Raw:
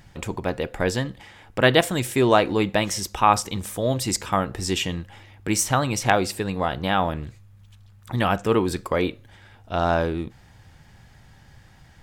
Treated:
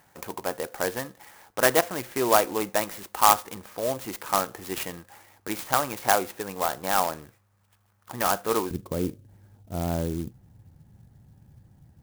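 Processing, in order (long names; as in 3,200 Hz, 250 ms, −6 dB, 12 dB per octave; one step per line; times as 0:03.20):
resonant band-pass 1,100 Hz, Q 0.71, from 0:08.71 150 Hz
converter with an unsteady clock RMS 0.073 ms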